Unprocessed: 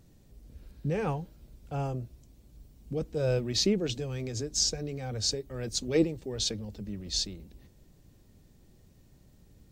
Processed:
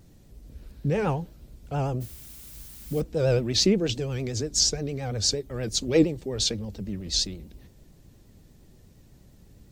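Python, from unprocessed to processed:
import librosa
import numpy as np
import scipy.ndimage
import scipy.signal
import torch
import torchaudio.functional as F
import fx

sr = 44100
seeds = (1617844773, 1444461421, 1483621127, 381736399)

y = fx.vibrato(x, sr, rate_hz=8.6, depth_cents=88.0)
y = fx.dmg_noise_colour(y, sr, seeds[0], colour='blue', level_db=-51.0, at=(2.0, 3.0), fade=0.02)
y = y * librosa.db_to_amplitude(5.0)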